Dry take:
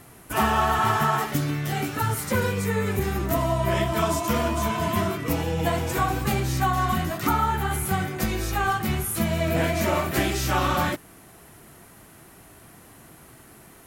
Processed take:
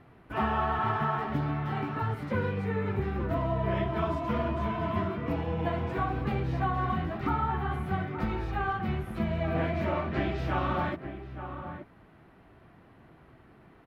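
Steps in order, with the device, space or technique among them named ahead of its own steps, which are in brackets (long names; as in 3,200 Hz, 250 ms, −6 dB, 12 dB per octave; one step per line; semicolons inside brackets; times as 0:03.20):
shout across a valley (high-frequency loss of the air 390 metres; slap from a distant wall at 150 metres, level −9 dB)
0:09.92–0:10.38: low-pass filter 7,200 Hz 24 dB per octave
level −5 dB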